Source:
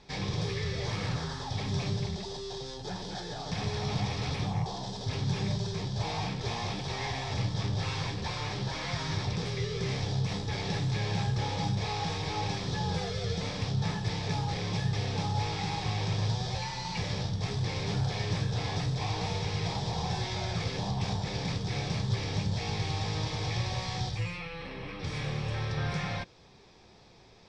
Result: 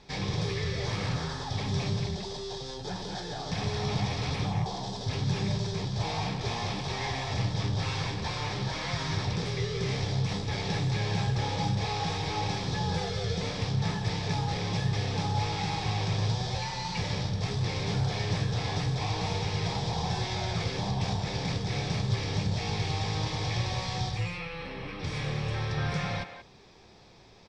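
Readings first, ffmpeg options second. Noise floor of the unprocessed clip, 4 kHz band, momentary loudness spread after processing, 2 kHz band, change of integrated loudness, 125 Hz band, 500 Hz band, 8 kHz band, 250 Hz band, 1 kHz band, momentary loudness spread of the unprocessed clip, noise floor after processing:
-42 dBFS, +1.5 dB, 4 LU, +2.0 dB, +1.5 dB, +1.5 dB, +2.0 dB, +1.5 dB, +1.5 dB, +2.0 dB, 4 LU, -40 dBFS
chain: -filter_complex "[0:a]asplit=2[a][b];[b]adelay=180,highpass=300,lowpass=3.4k,asoftclip=type=hard:threshold=-28.5dB,volume=-9dB[c];[a][c]amix=inputs=2:normalize=0,volume=1.5dB"

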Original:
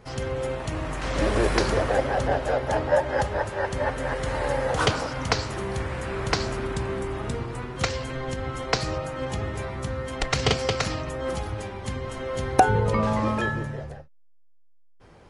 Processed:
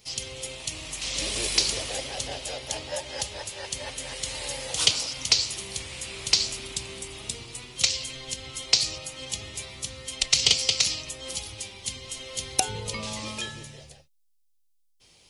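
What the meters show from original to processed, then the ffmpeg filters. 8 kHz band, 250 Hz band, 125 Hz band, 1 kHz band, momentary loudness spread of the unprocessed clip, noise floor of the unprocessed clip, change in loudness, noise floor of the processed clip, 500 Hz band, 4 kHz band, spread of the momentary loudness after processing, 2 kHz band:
+11.5 dB, -13.5 dB, -13.5 dB, -13.5 dB, 9 LU, -51 dBFS, -0.5 dB, -65 dBFS, -13.5 dB, +9.0 dB, 13 LU, -5.5 dB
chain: -af "aexciter=amount=15.9:drive=2.3:freq=2.4k,volume=-13.5dB"

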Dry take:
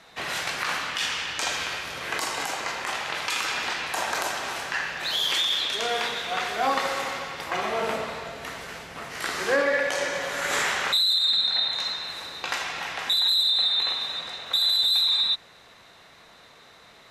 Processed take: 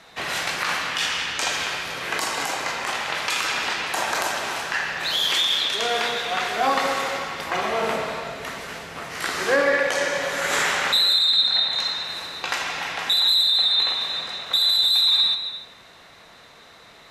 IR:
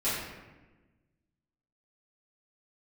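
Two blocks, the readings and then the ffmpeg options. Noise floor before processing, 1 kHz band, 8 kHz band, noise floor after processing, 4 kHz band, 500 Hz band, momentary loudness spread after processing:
-52 dBFS, +3.5 dB, +3.0 dB, -48 dBFS, +3.5 dB, +3.5 dB, 12 LU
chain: -filter_complex "[0:a]asplit=2[a][b];[1:a]atrim=start_sample=2205,adelay=136[c];[b][c]afir=irnorm=-1:irlink=0,volume=-18.5dB[d];[a][d]amix=inputs=2:normalize=0,volume=3dB"

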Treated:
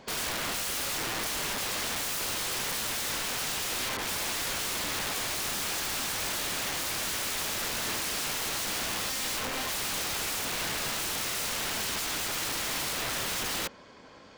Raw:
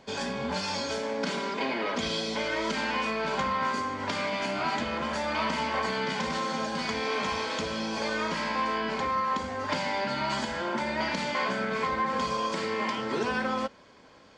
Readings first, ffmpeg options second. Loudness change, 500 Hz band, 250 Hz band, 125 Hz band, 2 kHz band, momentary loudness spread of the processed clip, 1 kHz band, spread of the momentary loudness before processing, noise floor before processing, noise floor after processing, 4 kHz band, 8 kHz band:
0.0 dB, -9.0 dB, -9.5 dB, -3.5 dB, -2.0 dB, 1 LU, -8.0 dB, 3 LU, -54 dBFS, -51 dBFS, +3.5 dB, +13.5 dB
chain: -af "aeval=exprs='(mod(33.5*val(0)+1,2)-1)/33.5':c=same,volume=3dB"

